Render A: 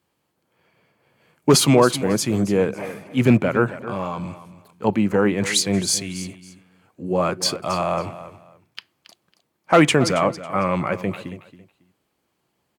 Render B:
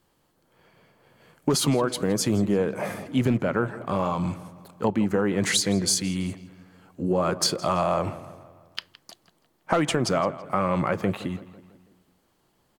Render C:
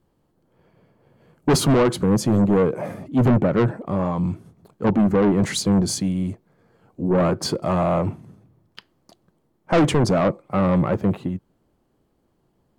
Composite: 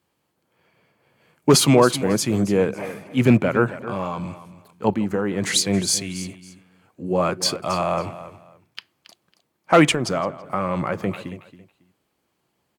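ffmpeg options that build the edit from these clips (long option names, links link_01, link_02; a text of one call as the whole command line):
ffmpeg -i take0.wav -i take1.wav -filter_complex "[1:a]asplit=2[link_01][link_02];[0:a]asplit=3[link_03][link_04][link_05];[link_03]atrim=end=4.942[link_06];[link_01]atrim=start=4.938:end=5.562[link_07];[link_04]atrim=start=5.558:end=9.922[link_08];[link_02]atrim=start=9.918:end=11.062[link_09];[link_05]atrim=start=11.058[link_10];[link_06][link_07]acrossfade=duration=0.004:curve1=hsin:curve2=hsin[link_11];[link_11][link_08]acrossfade=duration=0.004:curve1=hsin:curve2=hsin[link_12];[link_12][link_09]acrossfade=duration=0.004:curve1=hsin:curve2=hsin[link_13];[link_13][link_10]acrossfade=duration=0.004:curve1=hsin:curve2=hsin" out.wav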